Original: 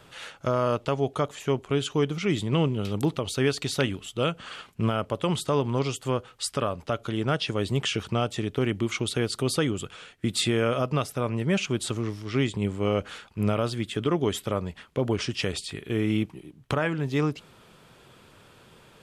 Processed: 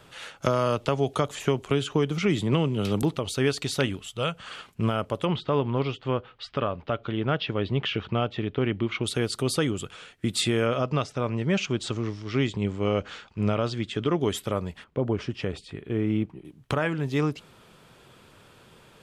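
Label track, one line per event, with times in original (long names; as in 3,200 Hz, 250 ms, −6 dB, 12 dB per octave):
0.420000	3.030000	multiband upward and downward compressor depth 100%
4.020000	4.480000	parametric band 300 Hz −10.5 dB 0.88 octaves
5.250000	9.040000	low-pass filter 3,700 Hz 24 dB per octave
10.660000	14.210000	low-pass filter 6,900 Hz 24 dB per octave
14.840000	16.450000	low-pass filter 1,200 Hz 6 dB per octave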